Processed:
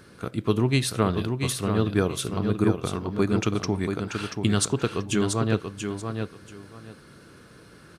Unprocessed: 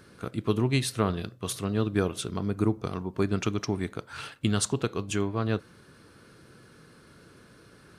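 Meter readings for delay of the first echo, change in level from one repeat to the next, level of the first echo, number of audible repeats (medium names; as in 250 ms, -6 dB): 684 ms, -13.5 dB, -6.0 dB, 2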